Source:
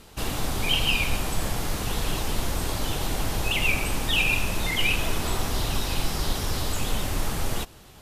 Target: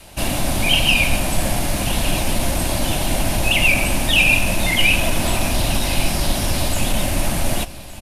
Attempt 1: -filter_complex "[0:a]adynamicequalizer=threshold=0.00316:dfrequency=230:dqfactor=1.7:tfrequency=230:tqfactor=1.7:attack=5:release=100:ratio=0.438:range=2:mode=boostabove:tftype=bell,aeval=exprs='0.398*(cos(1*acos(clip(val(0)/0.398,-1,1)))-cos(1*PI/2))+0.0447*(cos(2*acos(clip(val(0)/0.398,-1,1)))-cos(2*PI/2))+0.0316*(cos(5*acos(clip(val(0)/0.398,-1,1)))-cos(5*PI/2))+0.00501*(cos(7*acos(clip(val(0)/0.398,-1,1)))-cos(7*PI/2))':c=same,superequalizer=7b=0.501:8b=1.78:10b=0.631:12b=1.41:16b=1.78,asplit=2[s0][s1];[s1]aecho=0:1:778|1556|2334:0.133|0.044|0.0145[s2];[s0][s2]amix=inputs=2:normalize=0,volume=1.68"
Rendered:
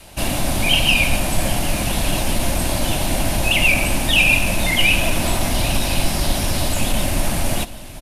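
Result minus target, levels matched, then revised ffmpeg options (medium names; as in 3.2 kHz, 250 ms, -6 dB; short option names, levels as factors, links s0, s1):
echo 390 ms early
-filter_complex "[0:a]adynamicequalizer=threshold=0.00316:dfrequency=230:dqfactor=1.7:tfrequency=230:tqfactor=1.7:attack=5:release=100:ratio=0.438:range=2:mode=boostabove:tftype=bell,aeval=exprs='0.398*(cos(1*acos(clip(val(0)/0.398,-1,1)))-cos(1*PI/2))+0.0447*(cos(2*acos(clip(val(0)/0.398,-1,1)))-cos(2*PI/2))+0.0316*(cos(5*acos(clip(val(0)/0.398,-1,1)))-cos(5*PI/2))+0.00501*(cos(7*acos(clip(val(0)/0.398,-1,1)))-cos(7*PI/2))':c=same,superequalizer=7b=0.501:8b=1.78:10b=0.631:12b=1.41:16b=1.78,asplit=2[s0][s1];[s1]aecho=0:1:1168|2336|3504:0.133|0.044|0.0145[s2];[s0][s2]amix=inputs=2:normalize=0,volume=1.68"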